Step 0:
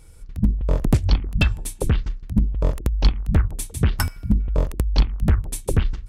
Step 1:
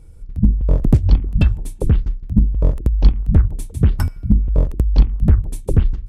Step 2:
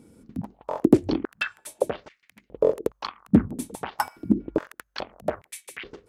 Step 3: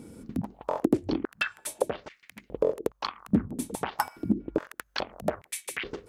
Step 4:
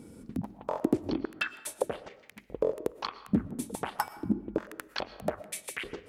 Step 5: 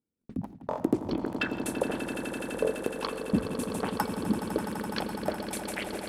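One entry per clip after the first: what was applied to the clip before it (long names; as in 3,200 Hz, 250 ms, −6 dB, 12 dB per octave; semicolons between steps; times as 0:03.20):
tilt shelving filter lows +7 dB, about 720 Hz; level −1.5 dB
high-pass on a step sequencer 2.4 Hz 240–2,100 Hz
downward compressor 2 to 1, threshold −37 dBFS, peak gain reduction 15.5 dB; level +6.5 dB
convolution reverb RT60 0.80 s, pre-delay 78 ms, DRR 15.5 dB; level −3 dB
noise gate −43 dBFS, range −40 dB; echo that builds up and dies away 84 ms, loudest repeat 8, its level −12 dB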